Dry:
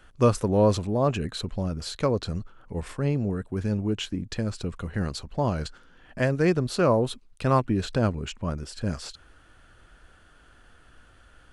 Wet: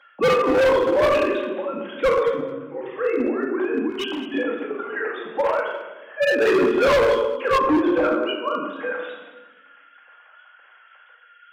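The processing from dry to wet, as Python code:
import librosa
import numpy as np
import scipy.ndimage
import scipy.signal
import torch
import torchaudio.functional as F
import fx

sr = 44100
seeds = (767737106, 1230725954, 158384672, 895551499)

y = fx.sine_speech(x, sr)
y = fx.ring_mod(y, sr, carrier_hz=70.0, at=(2.24, 2.97))
y = scipy.signal.sosfilt(scipy.signal.bessel(4, 280.0, 'highpass', norm='mag', fs=sr, output='sos'), y)
y = fx.room_shoebox(y, sr, seeds[0], volume_m3=640.0, walls='mixed', distance_m=2.2)
y = np.clip(10.0 ** (18.5 / 20.0) * y, -1.0, 1.0) / 10.0 ** (18.5 / 20.0)
y = fx.peak_eq(y, sr, hz=380.0, db=-10.5, octaves=1.9, at=(3.9, 4.34))
y = fx.lowpass(y, sr, hz=fx.line((7.57, 1200.0), (8.27, 2900.0)), slope=6, at=(7.57, 8.27), fade=0.02)
y = y + 10.0 ** (-17.0 / 20.0) * np.pad(y, (int(216 * sr / 1000.0), 0))[:len(y)]
y = fx.end_taper(y, sr, db_per_s=170.0)
y = y * 10.0 ** (4.0 / 20.0)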